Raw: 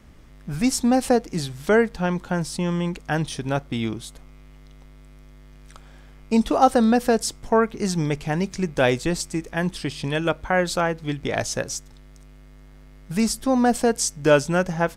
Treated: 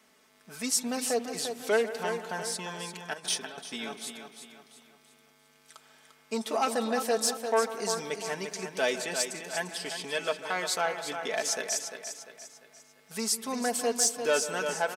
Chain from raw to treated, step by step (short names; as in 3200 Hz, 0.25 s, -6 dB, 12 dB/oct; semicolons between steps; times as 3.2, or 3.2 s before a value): feedback echo 0.347 s, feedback 41%, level -9 dB; 3.13–3.58 negative-ratio compressor -31 dBFS, ratio -1; soft clip -11.5 dBFS, distortion -17 dB; HPF 430 Hz 12 dB/oct; high shelf 3400 Hz +7 dB; comb 4.6 ms, depth 68%; on a send at -12.5 dB: reverb, pre-delay 0.146 s; on the sum: gain -7.5 dB